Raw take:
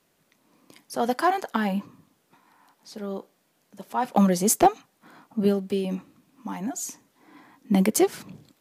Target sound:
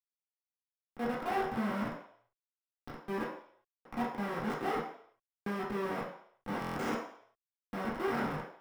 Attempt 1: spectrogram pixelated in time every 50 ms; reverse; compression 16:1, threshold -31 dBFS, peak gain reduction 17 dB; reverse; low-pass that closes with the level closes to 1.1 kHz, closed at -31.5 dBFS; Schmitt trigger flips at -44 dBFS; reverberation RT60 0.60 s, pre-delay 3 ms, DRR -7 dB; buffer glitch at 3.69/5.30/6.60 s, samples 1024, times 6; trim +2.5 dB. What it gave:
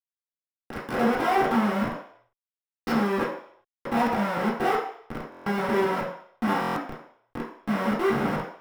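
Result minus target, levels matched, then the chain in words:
compression: peak gain reduction -10.5 dB
spectrogram pixelated in time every 50 ms; reverse; compression 16:1, threshold -42 dBFS, peak gain reduction 27 dB; reverse; low-pass that closes with the level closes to 1.1 kHz, closed at -31.5 dBFS; Schmitt trigger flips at -44 dBFS; reverberation RT60 0.60 s, pre-delay 3 ms, DRR -7 dB; buffer glitch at 3.69/5.30/6.60 s, samples 1024, times 6; trim +2.5 dB

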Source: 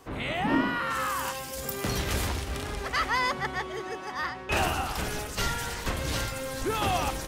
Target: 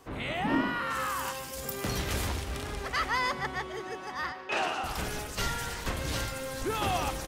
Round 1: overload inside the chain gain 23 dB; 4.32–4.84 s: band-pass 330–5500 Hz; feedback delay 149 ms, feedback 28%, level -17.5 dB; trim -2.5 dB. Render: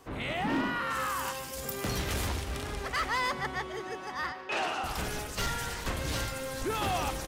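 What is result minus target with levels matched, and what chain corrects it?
overload inside the chain: distortion +34 dB
overload inside the chain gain 15 dB; 4.32–4.84 s: band-pass 330–5500 Hz; feedback delay 149 ms, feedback 28%, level -17.5 dB; trim -2.5 dB

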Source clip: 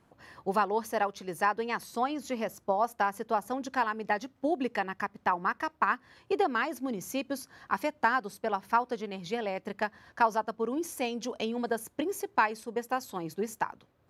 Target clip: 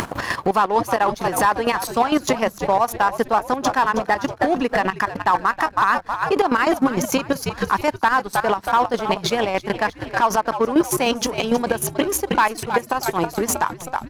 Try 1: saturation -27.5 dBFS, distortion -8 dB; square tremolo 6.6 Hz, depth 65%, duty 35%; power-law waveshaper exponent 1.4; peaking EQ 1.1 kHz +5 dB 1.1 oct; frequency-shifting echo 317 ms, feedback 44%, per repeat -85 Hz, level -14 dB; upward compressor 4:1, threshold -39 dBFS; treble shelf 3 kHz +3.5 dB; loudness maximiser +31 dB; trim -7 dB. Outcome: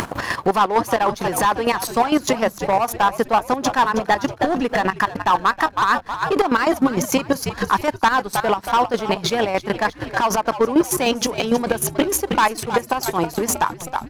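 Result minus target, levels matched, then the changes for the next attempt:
saturation: distortion +6 dB
change: saturation -21 dBFS, distortion -14 dB

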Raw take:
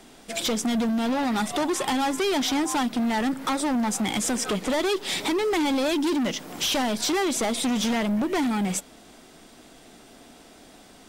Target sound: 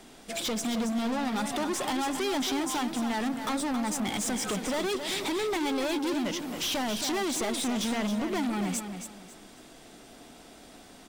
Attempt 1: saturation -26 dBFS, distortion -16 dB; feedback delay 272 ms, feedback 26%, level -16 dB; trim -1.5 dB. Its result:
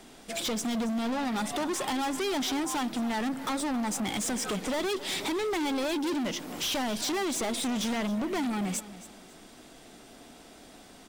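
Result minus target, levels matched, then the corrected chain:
echo-to-direct -8 dB
saturation -26 dBFS, distortion -16 dB; feedback delay 272 ms, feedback 26%, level -8 dB; trim -1.5 dB

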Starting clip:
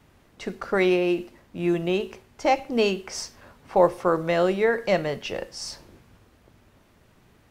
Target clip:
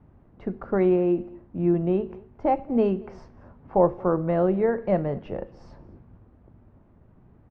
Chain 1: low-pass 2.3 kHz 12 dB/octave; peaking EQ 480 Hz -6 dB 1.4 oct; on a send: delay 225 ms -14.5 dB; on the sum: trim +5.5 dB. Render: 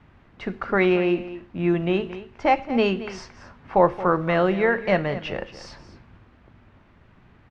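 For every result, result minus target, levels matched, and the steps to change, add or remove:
2 kHz band +14.0 dB; echo-to-direct +9 dB
change: low-pass 690 Hz 12 dB/octave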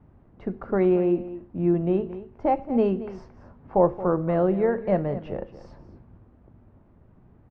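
echo-to-direct +9 dB
change: delay 225 ms -23.5 dB

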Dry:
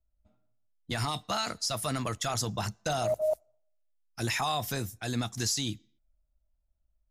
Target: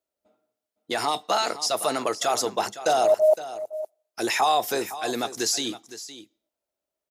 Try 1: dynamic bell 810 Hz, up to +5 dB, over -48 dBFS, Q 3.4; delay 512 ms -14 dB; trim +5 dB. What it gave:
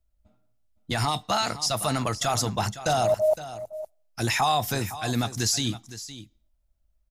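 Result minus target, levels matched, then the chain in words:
500 Hz band -2.5 dB
dynamic bell 810 Hz, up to +5 dB, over -48 dBFS, Q 3.4; resonant high-pass 400 Hz, resonance Q 2.3; delay 512 ms -14 dB; trim +5 dB

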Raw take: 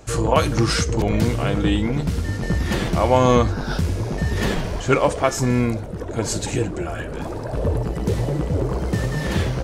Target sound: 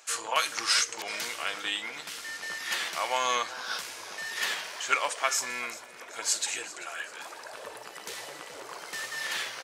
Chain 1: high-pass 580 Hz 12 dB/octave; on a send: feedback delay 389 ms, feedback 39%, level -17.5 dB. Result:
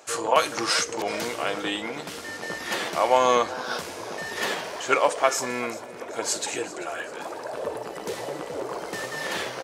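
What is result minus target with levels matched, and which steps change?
500 Hz band +10.5 dB
change: high-pass 1.5 kHz 12 dB/octave

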